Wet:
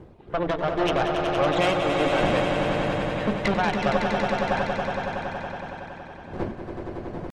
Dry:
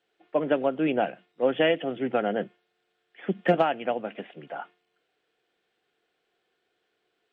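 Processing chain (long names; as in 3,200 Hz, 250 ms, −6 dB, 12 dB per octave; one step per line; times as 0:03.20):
wind on the microphone 300 Hz −42 dBFS
dynamic equaliser 150 Hz, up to +7 dB, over −41 dBFS, Q 4.1
rectangular room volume 2,700 cubic metres, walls mixed, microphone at 0.55 metres
reverb reduction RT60 1.8 s
downward compressor 20 to 1, threshold −22 dBFS, peak gain reduction 8.5 dB
pitch shifter +2 semitones
brickwall limiter −21.5 dBFS, peak gain reduction 8 dB
harmonic generator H 4 −8 dB, 5 −26 dB, 6 −24 dB, 7 −40 dB, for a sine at −20.5 dBFS
mains-hum notches 60/120/180/240/300/360/420 Hz
echo that builds up and dies away 93 ms, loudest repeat 5, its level −7 dB
level +4.5 dB
Opus 24 kbit/s 48,000 Hz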